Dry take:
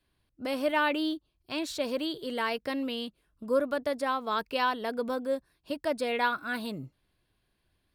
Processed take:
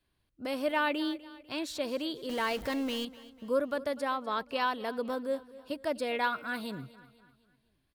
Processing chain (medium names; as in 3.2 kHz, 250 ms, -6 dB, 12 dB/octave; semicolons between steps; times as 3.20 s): 2.29–3.05 s: jump at every zero crossing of -35 dBFS; 4.15–4.60 s: treble shelf 5.6 kHz -> 10 kHz -8.5 dB; on a send: feedback delay 248 ms, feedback 46%, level -18.5 dB; on the sum: trim -2.5 dB